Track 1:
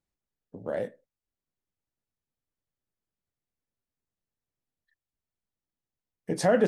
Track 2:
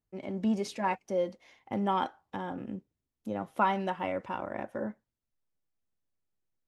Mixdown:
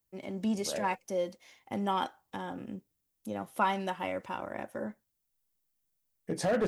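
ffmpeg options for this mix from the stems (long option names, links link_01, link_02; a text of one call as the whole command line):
ffmpeg -i stem1.wav -i stem2.wav -filter_complex "[0:a]volume=19.5dB,asoftclip=hard,volume=-19.5dB,volume=-4dB[link_01];[1:a]aemphasis=mode=production:type=75kf,volume=-2.5dB,asplit=2[link_02][link_03];[link_03]apad=whole_len=294512[link_04];[link_01][link_04]sidechaincompress=threshold=-36dB:ratio=8:attack=16:release=123[link_05];[link_05][link_02]amix=inputs=2:normalize=0" out.wav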